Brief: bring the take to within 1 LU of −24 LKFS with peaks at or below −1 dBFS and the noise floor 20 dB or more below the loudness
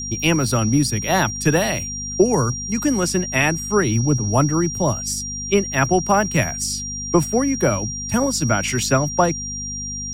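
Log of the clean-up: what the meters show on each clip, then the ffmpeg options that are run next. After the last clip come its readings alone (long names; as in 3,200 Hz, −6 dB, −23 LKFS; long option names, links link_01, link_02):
mains hum 50 Hz; hum harmonics up to 250 Hz; level of the hum −32 dBFS; interfering tone 5,700 Hz; level of the tone −27 dBFS; integrated loudness −19.5 LKFS; sample peak −3.0 dBFS; target loudness −24.0 LKFS
→ -af "bandreject=frequency=50:width_type=h:width=4,bandreject=frequency=100:width_type=h:width=4,bandreject=frequency=150:width_type=h:width=4,bandreject=frequency=200:width_type=h:width=4,bandreject=frequency=250:width_type=h:width=4"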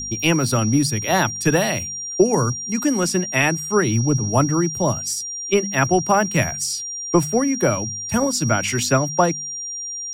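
mains hum none found; interfering tone 5,700 Hz; level of the tone −27 dBFS
→ -af "bandreject=frequency=5700:width=30"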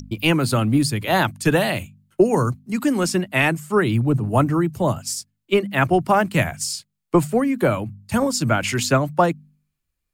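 interfering tone none found; integrated loudness −20.5 LKFS; sample peak −3.5 dBFS; target loudness −24.0 LKFS
→ -af "volume=-3.5dB"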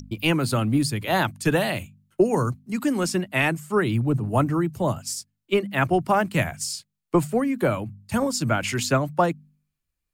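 integrated loudness −24.0 LKFS; sample peak −7.0 dBFS; background noise floor −81 dBFS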